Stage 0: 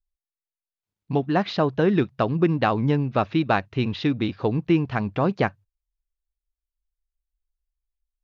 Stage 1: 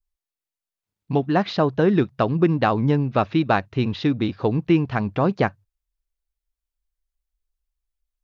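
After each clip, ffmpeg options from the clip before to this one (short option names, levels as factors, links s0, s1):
-af "adynamicequalizer=threshold=0.00708:dfrequency=2600:dqfactor=1.3:tfrequency=2600:tqfactor=1.3:attack=5:release=100:ratio=0.375:range=2:mode=cutabove:tftype=bell,volume=1.26"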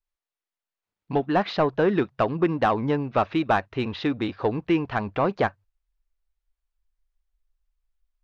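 -filter_complex "[0:a]asubboost=boost=7:cutoff=53,asplit=2[s0][s1];[s1]highpass=f=720:p=1,volume=4.47,asoftclip=type=tanh:threshold=0.473[s2];[s0][s2]amix=inputs=2:normalize=0,lowpass=f=1700:p=1,volume=0.501,volume=0.708"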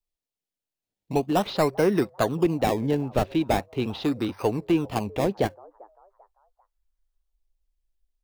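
-filter_complex "[0:a]acrossover=split=240|890|2200[s0][s1][s2][s3];[s1]asplit=4[s4][s5][s6][s7];[s5]adelay=394,afreqshift=99,volume=0.0794[s8];[s6]adelay=788,afreqshift=198,volume=0.0295[s9];[s7]adelay=1182,afreqshift=297,volume=0.0108[s10];[s4][s8][s9][s10]amix=inputs=4:normalize=0[s11];[s2]acrusher=samples=24:mix=1:aa=0.000001:lfo=1:lforange=24:lforate=0.4[s12];[s0][s11][s12][s3]amix=inputs=4:normalize=0"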